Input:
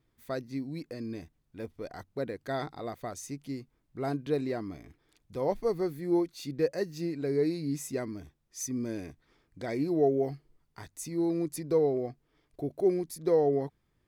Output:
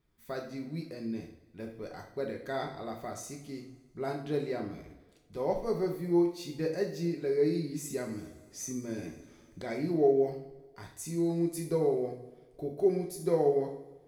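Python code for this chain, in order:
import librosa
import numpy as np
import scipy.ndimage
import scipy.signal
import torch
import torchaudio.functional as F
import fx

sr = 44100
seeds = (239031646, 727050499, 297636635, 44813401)

y = fx.rev_double_slope(x, sr, seeds[0], early_s=0.53, late_s=1.7, knee_db=-17, drr_db=0.5)
y = fx.band_squash(y, sr, depth_pct=40, at=(7.9, 9.62))
y = y * librosa.db_to_amplitude(-3.5)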